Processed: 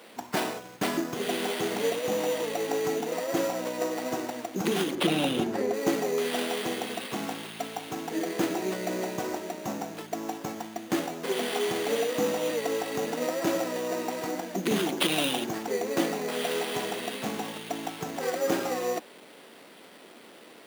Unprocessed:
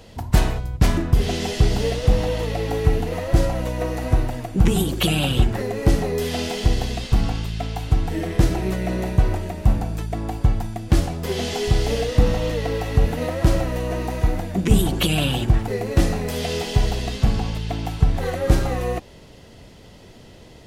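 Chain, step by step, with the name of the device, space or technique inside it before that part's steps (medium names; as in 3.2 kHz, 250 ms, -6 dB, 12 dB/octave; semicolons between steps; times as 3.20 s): early 8-bit sampler (sample-rate reducer 6.5 kHz, jitter 0%; bit crusher 8-bit); high-pass 240 Hz 24 dB/octave; 4.95–5.74 s: tilt EQ -2 dB/octave; trim -3 dB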